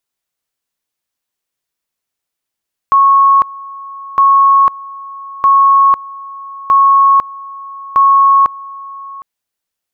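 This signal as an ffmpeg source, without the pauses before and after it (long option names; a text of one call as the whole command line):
ffmpeg -f lavfi -i "aevalsrc='pow(10,(-4.5-21*gte(mod(t,1.26),0.5))/20)*sin(2*PI*1100*t)':duration=6.3:sample_rate=44100" out.wav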